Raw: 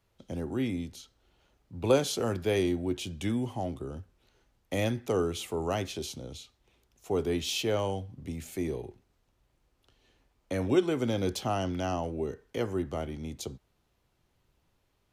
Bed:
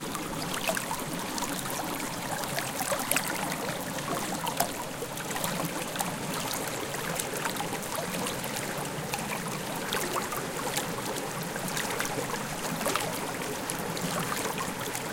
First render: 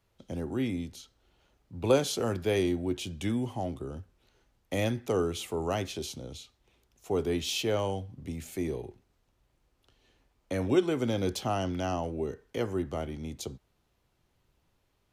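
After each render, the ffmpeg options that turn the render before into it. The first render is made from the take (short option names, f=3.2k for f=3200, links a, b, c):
-af anull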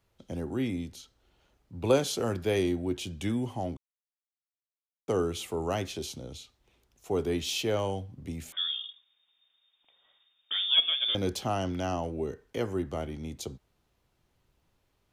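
-filter_complex "[0:a]asettb=1/sr,asplit=3[a][b][c];[a]atrim=end=8.524[d];[b]atrim=start=8.52:end=11.15,asetpts=PTS-STARTPTS,afade=t=in:d=0.004:c=qsin,afade=t=out:st=2.626:d=0.004:c=qsin,lowpass=f=3.1k:t=q:w=0.5098,lowpass=f=3.1k:t=q:w=0.6013,lowpass=f=3.1k:t=q:w=0.9,lowpass=f=3.1k:t=q:w=2.563,afreqshift=-3700[e];[c]atrim=start=11.146[f];[d][e]acrossfade=d=0.004:c1=hsin:c2=qsin[g];[g][f]acrossfade=d=0.004:c1=qsin:c2=hsin,asplit=3[h][i][j];[h]atrim=end=3.77,asetpts=PTS-STARTPTS,afade=t=out:st=3.766:d=0.004:c=hsin[k];[i]atrim=start=3.77:end=5.08,asetpts=PTS-STARTPTS,volume=0[l];[j]atrim=start=5.08,asetpts=PTS-STARTPTS,afade=t=in:d=0.004:c=hsin[m];[k][l][m]concat=n=3:v=0:a=1"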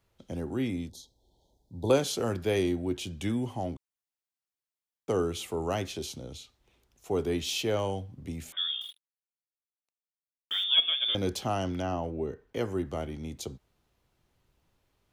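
-filter_complex "[0:a]asettb=1/sr,asplit=3[a][b][c];[a]atrim=end=0.894[d];[b]atrim=start=0.89:end=1.9,asetpts=PTS-STARTPTS,afade=t=in:d=0.004:c=qsin,afade=t=out:st=1.006:d=0.004:c=qsin,asuperstop=centerf=1800:order=20:qfactor=0.76[e];[c]atrim=start=1.896[f];[d][e]acrossfade=d=0.004:c1=hsin:c2=qsin[g];[g][f]acrossfade=d=0.004:c1=qsin:c2=hsin,asettb=1/sr,asplit=3[h][i][j];[h]atrim=end=8.814[k];[i]atrim=start=8.81:end=10.64,asetpts=PTS-STARTPTS,afade=t=in:d=0.004:c=qsin,afade=t=out:st=1.826:d=0.004:c=qsin,acrusher=bits=7:mix=0:aa=0.5[l];[j]atrim=start=10.636[m];[k][l]acrossfade=d=0.004:c1=hsin:c2=qsin[n];[n][m]acrossfade=d=0.004:c1=qsin:c2=hsin,asettb=1/sr,asplit=3[o][p][q];[o]atrim=end=11.824[r];[p]atrim=start=11.82:end=12.56,asetpts=PTS-STARTPTS,afade=t=in:d=0.004:c=qsin,afade=t=out:st=0.736:d=0.004:c=qsin,equalizer=f=10k:t=o:w=2.5:g=-10[s];[q]atrim=start=12.556[t];[r][s]acrossfade=d=0.004:c1=hsin:c2=qsin[u];[u][t]acrossfade=d=0.004:c1=qsin:c2=hsin"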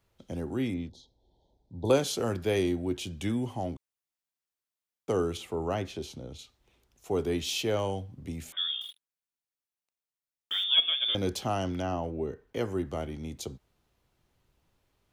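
-filter_complex "[0:a]asettb=1/sr,asplit=3[a][b][c];[a]atrim=end=0.744[d];[b]atrim=start=0.74:end=1.85,asetpts=PTS-STARTPTS,afade=t=in:d=0.004:c=qsin,afade=t=out:st=1.106:d=0.004:c=qsin,lowpass=3.5k[e];[c]atrim=start=1.846[f];[d][e]acrossfade=d=0.004:c1=hsin:c2=qsin[g];[g][f]acrossfade=d=0.004:c1=qsin:c2=hsin,asettb=1/sr,asplit=3[h][i][j];[h]atrim=end=5.374[k];[i]atrim=start=5.37:end=6.39,asetpts=PTS-STARTPTS,afade=t=in:d=0.004:c=qsin,afade=t=out:st=1.016:d=0.004:c=qsin,highshelf=f=3.9k:g=-10[l];[j]atrim=start=6.386[m];[k][l]acrossfade=d=0.004:c1=hsin:c2=qsin[n];[n][m]acrossfade=d=0.004:c1=qsin:c2=hsin"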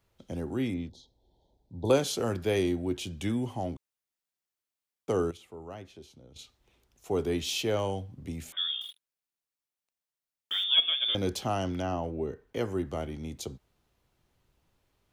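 -filter_complex "[0:a]asplit=3[a][b][c];[a]atrim=end=5.312[d];[b]atrim=start=5.308:end=6.362,asetpts=PTS-STARTPTS,volume=-12dB[e];[c]atrim=start=6.358[f];[d][e]acrossfade=d=0.004:c1=hsin:c2=hsin[g];[g][f]acrossfade=d=0.004:c1=hsin:c2=hsin"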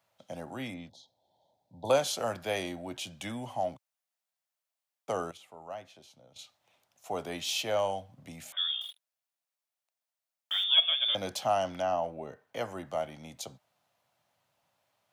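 -af "highpass=f=110:w=0.5412,highpass=f=110:w=1.3066,lowshelf=f=500:t=q:w=3:g=-7"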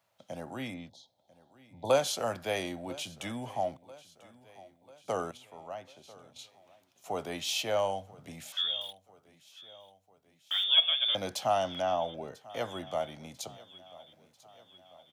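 -af "aecho=1:1:993|1986|2979|3972:0.0891|0.0499|0.0279|0.0157"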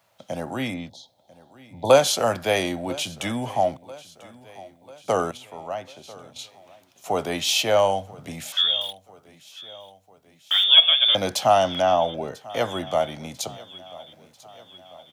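-af "volume=10.5dB,alimiter=limit=-3dB:level=0:latency=1"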